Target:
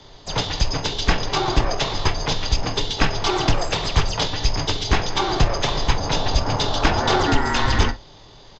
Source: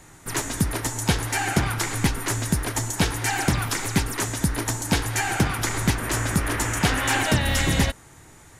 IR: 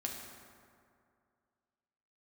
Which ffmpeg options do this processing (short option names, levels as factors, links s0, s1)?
-filter_complex "[0:a]asetrate=22696,aresample=44100,atempo=1.94306,afreqshift=-44,asplit=2[s0][s1];[1:a]atrim=start_sample=2205,atrim=end_sample=3528,asetrate=52920,aresample=44100[s2];[s1][s2]afir=irnorm=-1:irlink=0,volume=1.12[s3];[s0][s3]amix=inputs=2:normalize=0"